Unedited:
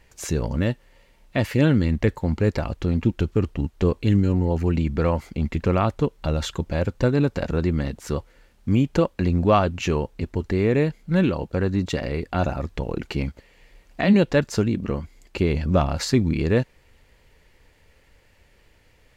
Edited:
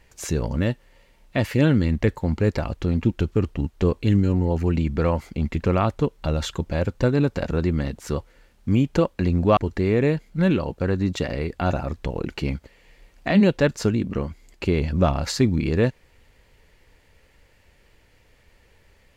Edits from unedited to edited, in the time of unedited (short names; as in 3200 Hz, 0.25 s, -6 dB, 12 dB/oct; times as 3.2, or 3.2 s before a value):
9.57–10.3 cut